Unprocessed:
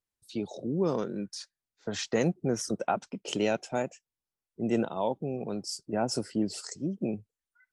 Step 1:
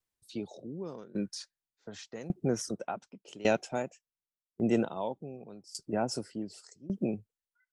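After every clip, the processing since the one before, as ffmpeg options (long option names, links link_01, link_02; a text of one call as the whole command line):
ffmpeg -i in.wav -af "aeval=exprs='val(0)*pow(10,-21*if(lt(mod(0.87*n/s,1),2*abs(0.87)/1000),1-mod(0.87*n/s,1)/(2*abs(0.87)/1000),(mod(0.87*n/s,1)-2*abs(0.87)/1000)/(1-2*abs(0.87)/1000))/20)':channel_layout=same,volume=3dB" out.wav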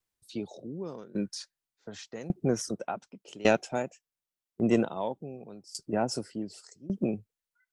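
ffmpeg -i in.wav -af "aeval=exprs='0.251*(cos(1*acos(clip(val(0)/0.251,-1,1)))-cos(1*PI/2))+0.0282*(cos(3*acos(clip(val(0)/0.251,-1,1)))-cos(3*PI/2))':channel_layout=same,volume=5.5dB" out.wav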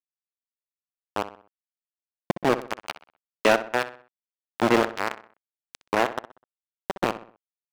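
ffmpeg -i in.wav -filter_complex "[0:a]aeval=exprs='val(0)*gte(abs(val(0)),0.075)':channel_layout=same,asplit=2[link_01][link_02];[link_02]highpass=frequency=720:poles=1,volume=21dB,asoftclip=type=tanh:threshold=-6dB[link_03];[link_01][link_03]amix=inputs=2:normalize=0,lowpass=frequency=2400:poles=1,volume=-6dB,asplit=2[link_04][link_05];[link_05]adelay=63,lowpass=frequency=3300:poles=1,volume=-12.5dB,asplit=2[link_06][link_07];[link_07]adelay=63,lowpass=frequency=3300:poles=1,volume=0.43,asplit=2[link_08][link_09];[link_09]adelay=63,lowpass=frequency=3300:poles=1,volume=0.43,asplit=2[link_10][link_11];[link_11]adelay=63,lowpass=frequency=3300:poles=1,volume=0.43[link_12];[link_04][link_06][link_08][link_10][link_12]amix=inputs=5:normalize=0" out.wav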